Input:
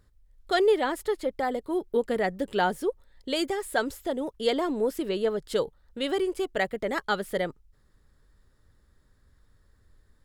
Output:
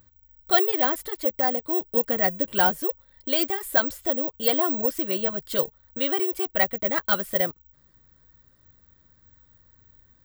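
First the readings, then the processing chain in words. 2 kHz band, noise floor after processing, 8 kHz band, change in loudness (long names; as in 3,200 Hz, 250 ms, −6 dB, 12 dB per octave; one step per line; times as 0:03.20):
+3.0 dB, −61 dBFS, +2.5 dB, +5.5 dB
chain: dynamic equaliser 250 Hz, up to −4 dB, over −40 dBFS, Q 0.74
notch comb filter 430 Hz
bad sample-rate conversion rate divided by 2×, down filtered, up zero stuff
level +4 dB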